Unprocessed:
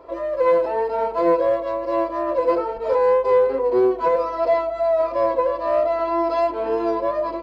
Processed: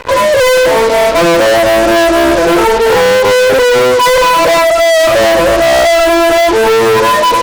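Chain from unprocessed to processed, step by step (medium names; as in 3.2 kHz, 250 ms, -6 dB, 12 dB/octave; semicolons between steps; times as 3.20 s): drifting ripple filter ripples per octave 1, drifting +0.27 Hz, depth 23 dB; fuzz box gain 32 dB, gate -36 dBFS; trim +6.5 dB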